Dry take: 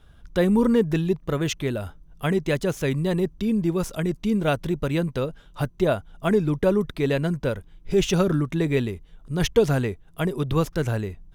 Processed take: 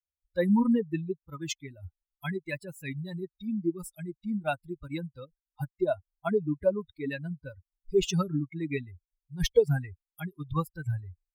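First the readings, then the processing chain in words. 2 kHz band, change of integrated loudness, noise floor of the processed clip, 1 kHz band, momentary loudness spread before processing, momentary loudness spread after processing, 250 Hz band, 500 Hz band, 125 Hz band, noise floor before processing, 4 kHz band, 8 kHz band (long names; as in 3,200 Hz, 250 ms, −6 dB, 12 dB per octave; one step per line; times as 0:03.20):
−8.0 dB, −7.0 dB, below −85 dBFS, −7.0 dB, 9 LU, 16 LU, −7.5 dB, −7.0 dB, −9.0 dB, −51 dBFS, −7.0 dB, −5.5 dB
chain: spectral dynamics exaggerated over time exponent 3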